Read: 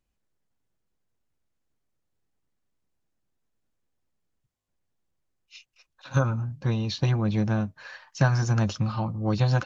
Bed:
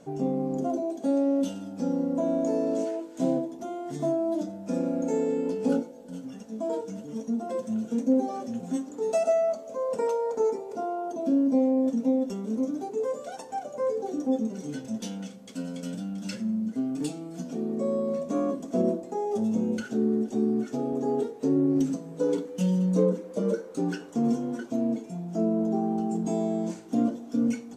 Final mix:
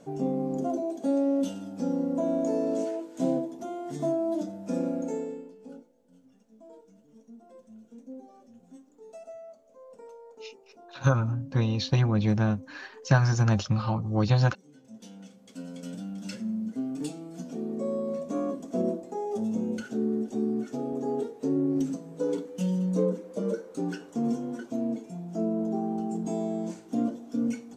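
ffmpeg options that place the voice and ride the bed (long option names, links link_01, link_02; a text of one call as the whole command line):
ffmpeg -i stem1.wav -i stem2.wav -filter_complex "[0:a]adelay=4900,volume=0.5dB[link_01];[1:a]volume=16.5dB,afade=type=out:start_time=4.85:duration=0.65:silence=0.105925,afade=type=in:start_time=14.75:duration=1.29:silence=0.133352[link_02];[link_01][link_02]amix=inputs=2:normalize=0" out.wav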